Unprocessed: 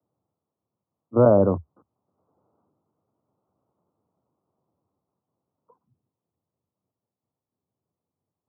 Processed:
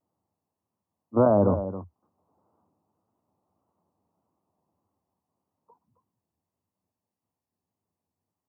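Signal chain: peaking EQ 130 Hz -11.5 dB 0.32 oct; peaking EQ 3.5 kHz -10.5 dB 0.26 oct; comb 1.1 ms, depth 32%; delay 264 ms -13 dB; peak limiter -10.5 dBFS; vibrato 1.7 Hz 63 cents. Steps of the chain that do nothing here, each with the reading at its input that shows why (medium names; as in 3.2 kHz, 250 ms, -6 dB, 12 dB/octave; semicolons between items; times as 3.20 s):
peaking EQ 3.5 kHz: input has nothing above 1.4 kHz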